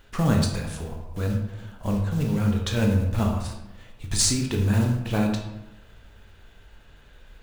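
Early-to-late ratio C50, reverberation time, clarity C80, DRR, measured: 4.5 dB, 0.95 s, 7.5 dB, 0.5 dB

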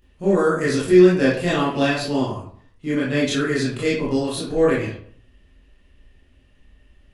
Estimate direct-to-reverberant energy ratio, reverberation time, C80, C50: −9.0 dB, 0.55 s, 7.5 dB, 2.5 dB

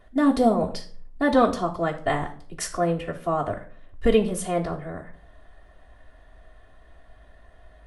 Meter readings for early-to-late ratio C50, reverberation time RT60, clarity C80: 12.5 dB, 0.50 s, 17.0 dB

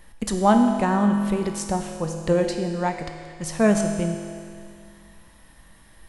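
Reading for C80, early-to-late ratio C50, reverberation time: 6.0 dB, 5.0 dB, 2.2 s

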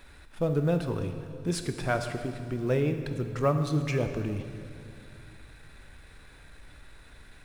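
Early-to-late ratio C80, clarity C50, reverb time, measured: 8.5 dB, 7.5 dB, 2.4 s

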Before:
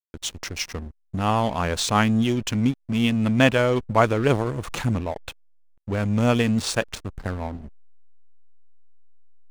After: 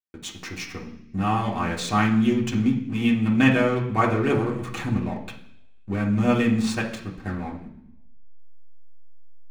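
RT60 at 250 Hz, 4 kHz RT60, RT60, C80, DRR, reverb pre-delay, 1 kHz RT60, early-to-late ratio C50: 0.85 s, 0.95 s, 0.70 s, 12.0 dB, −4.5 dB, 3 ms, 0.65 s, 8.0 dB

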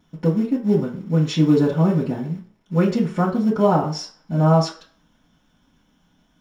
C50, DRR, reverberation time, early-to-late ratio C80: 9.5 dB, −10.0 dB, 0.45 s, 14.0 dB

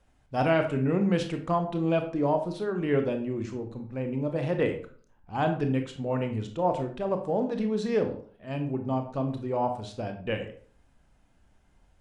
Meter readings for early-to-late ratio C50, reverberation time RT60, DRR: 9.0 dB, 0.45 s, 5.5 dB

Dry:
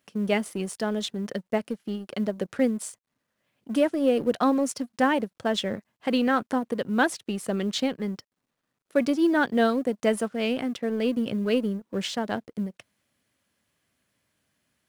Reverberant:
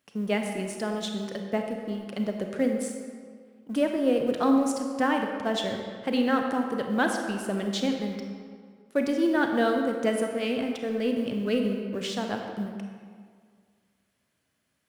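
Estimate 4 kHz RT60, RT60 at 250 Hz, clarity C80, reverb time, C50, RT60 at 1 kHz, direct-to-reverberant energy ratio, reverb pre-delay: 1.3 s, 1.9 s, 5.0 dB, 2.0 s, 4.0 dB, 2.0 s, 3.0 dB, 30 ms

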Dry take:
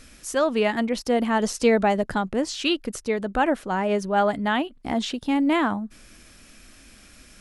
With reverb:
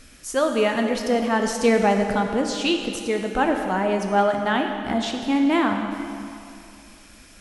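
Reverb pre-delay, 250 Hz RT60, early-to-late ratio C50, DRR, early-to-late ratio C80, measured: 9 ms, 2.4 s, 5.0 dB, 3.5 dB, 5.5 dB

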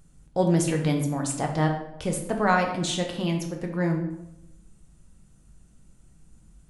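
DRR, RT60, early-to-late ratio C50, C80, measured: 2.0 dB, 0.90 s, 6.5 dB, 9.5 dB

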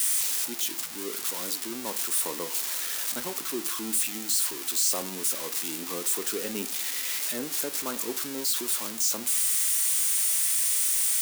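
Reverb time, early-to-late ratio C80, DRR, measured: 0.50 s, 21.0 dB, 11.0 dB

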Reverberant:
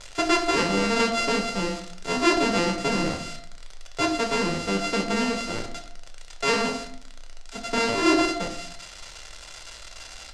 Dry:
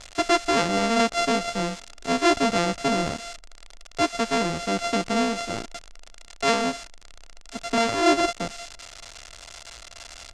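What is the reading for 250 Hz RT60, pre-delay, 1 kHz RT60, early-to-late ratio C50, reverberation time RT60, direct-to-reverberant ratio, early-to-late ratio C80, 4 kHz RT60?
0.75 s, 5 ms, 0.60 s, 9.5 dB, 0.60 s, 3.5 dB, 12.5 dB, 0.45 s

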